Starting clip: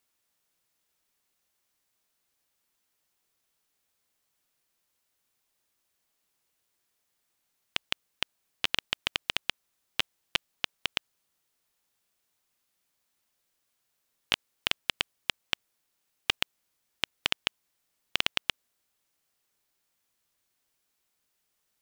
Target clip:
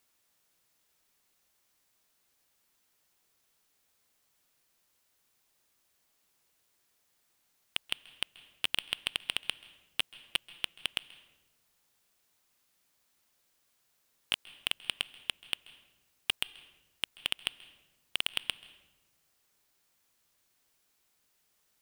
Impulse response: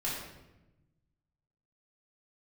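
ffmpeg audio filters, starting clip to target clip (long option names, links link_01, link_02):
-filter_complex "[0:a]asoftclip=type=tanh:threshold=-17.5dB,asplit=2[link_01][link_02];[1:a]atrim=start_sample=2205,adelay=132[link_03];[link_02][link_03]afir=irnorm=-1:irlink=0,volume=-22.5dB[link_04];[link_01][link_04]amix=inputs=2:normalize=0,volume=4dB"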